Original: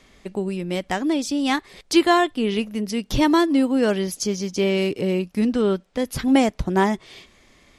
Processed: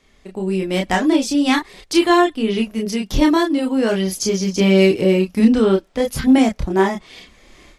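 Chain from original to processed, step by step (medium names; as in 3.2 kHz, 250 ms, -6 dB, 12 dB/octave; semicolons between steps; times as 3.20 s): chorus voices 6, 0.29 Hz, delay 29 ms, depth 2.9 ms; level rider gain up to 13.5 dB; trim -1 dB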